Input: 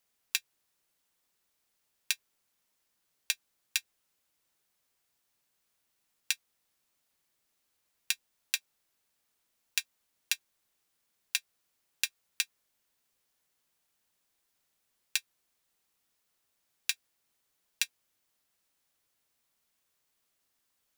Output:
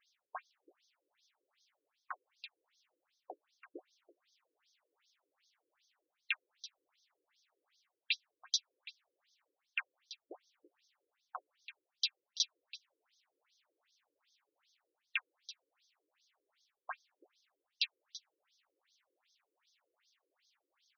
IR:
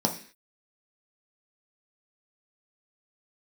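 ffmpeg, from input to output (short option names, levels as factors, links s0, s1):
-af "areverse,acompressor=threshold=0.0112:ratio=5,areverse,aeval=exprs='max(val(0),0)':c=same,equalizer=f=12000:w=0.47:g=4.5,aecho=1:1:333:0.15,afftfilt=real='re*between(b*sr/1024,370*pow(4700/370,0.5+0.5*sin(2*PI*2.6*pts/sr))/1.41,370*pow(4700/370,0.5+0.5*sin(2*PI*2.6*pts/sr))*1.41)':imag='im*between(b*sr/1024,370*pow(4700/370,0.5+0.5*sin(2*PI*2.6*pts/sr))/1.41,370*pow(4700/370,0.5+0.5*sin(2*PI*2.6*pts/sr))*1.41)':win_size=1024:overlap=0.75,volume=5.62"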